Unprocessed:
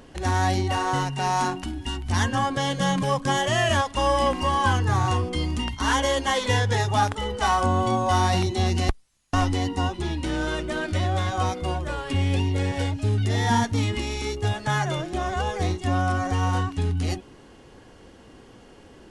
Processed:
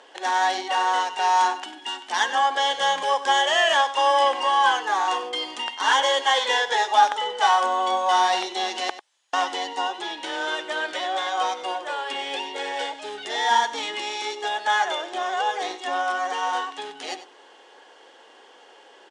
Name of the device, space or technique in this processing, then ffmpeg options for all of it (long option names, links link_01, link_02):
phone speaker on a table: -af "highpass=frequency=430:width=0.5412,highpass=frequency=430:width=1.3066,equalizer=frequency=860:width_type=q:width=4:gain=7,equalizer=frequency=1700:width_type=q:width=4:gain=5,equalizer=frequency=3300:width_type=q:width=4:gain=8,lowpass=frequency=8700:width=0.5412,lowpass=frequency=8700:width=1.3066,aecho=1:1:96:0.2"